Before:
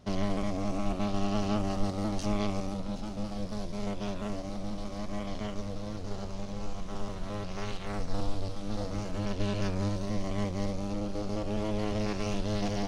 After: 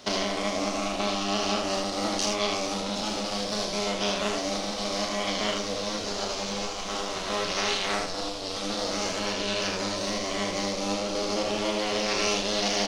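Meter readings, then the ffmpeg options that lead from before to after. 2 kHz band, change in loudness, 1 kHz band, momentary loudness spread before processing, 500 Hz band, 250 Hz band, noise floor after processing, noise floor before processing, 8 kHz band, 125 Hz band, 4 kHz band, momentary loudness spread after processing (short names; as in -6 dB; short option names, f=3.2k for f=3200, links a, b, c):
+13.0 dB, +6.5 dB, +8.5 dB, 8 LU, +7.0 dB, +0.5 dB, -33 dBFS, -38 dBFS, +16.0 dB, -6.5 dB, +16.5 dB, 4 LU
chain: -filter_complex "[0:a]acompressor=threshold=-32dB:ratio=6,asplit=2[a][b];[b]aecho=0:1:34|80:0.531|0.631[c];[a][c]amix=inputs=2:normalize=0,crystalizer=i=6:c=0,acrossover=split=250 6000:gain=0.141 1 0.141[d][e][f];[d][e][f]amix=inputs=3:normalize=0,volume=9dB"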